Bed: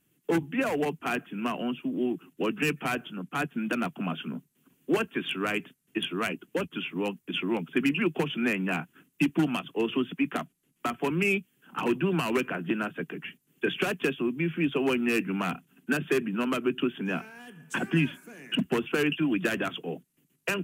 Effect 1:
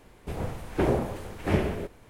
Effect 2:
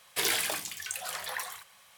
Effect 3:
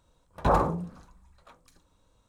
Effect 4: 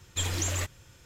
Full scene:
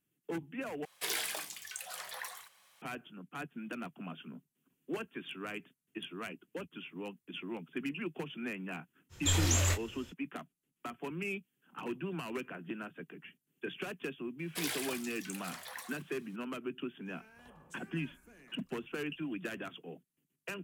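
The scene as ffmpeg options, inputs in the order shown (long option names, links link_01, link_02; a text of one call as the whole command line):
ffmpeg -i bed.wav -i cue0.wav -i cue1.wav -i cue2.wav -i cue3.wav -filter_complex "[2:a]asplit=2[link_01][link_02];[0:a]volume=-12.5dB[link_03];[link_01]highpass=frequency=190:poles=1[link_04];[4:a]asplit=2[link_05][link_06];[link_06]adelay=24,volume=-5.5dB[link_07];[link_05][link_07]amix=inputs=2:normalize=0[link_08];[3:a]acompressor=threshold=-48dB:ratio=6:attack=3.2:release=140:knee=1:detection=peak[link_09];[link_03]asplit=2[link_10][link_11];[link_10]atrim=end=0.854[link_12];[link_04]atrim=end=1.97,asetpts=PTS-STARTPTS,volume=-7dB[link_13];[link_11]atrim=start=2.816[link_14];[link_08]atrim=end=1.05,asetpts=PTS-STARTPTS,volume=-0.5dB,afade=type=in:duration=0.05,afade=type=out:start_time=1:duration=0.05,adelay=9090[link_15];[link_02]atrim=end=1.97,asetpts=PTS-STARTPTS,volume=-9.5dB,afade=type=in:duration=0.004:curve=hsin,afade=type=out:start_time=1.966:duration=0.004:curve=hsin,adelay=14390[link_16];[link_09]atrim=end=2.28,asetpts=PTS-STARTPTS,volume=-12.5dB,afade=type=in:duration=0.004:curve=hsin,afade=type=out:start_time=2.276:duration=0.004:curve=hsin,adelay=17010[link_17];[link_12][link_13]acrossfade=duration=0.004:curve1=hsin:curve2=hsin[link_18];[link_18][link_14]acrossfade=duration=0.004:curve1=hsin:curve2=hsin[link_19];[link_19][link_15][link_16][link_17]amix=inputs=4:normalize=0" out.wav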